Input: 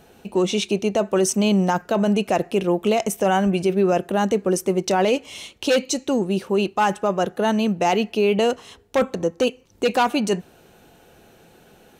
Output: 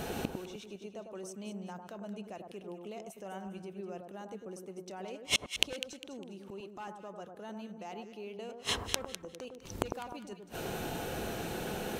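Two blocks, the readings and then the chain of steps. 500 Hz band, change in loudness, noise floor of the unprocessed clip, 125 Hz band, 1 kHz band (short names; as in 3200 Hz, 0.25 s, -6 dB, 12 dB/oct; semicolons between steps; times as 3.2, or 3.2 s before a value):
-21.5 dB, -18.5 dB, -53 dBFS, -17.5 dB, -20.5 dB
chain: flipped gate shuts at -28 dBFS, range -38 dB; echo with dull and thin repeats by turns 0.101 s, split 1300 Hz, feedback 54%, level -5 dB; gain +12.5 dB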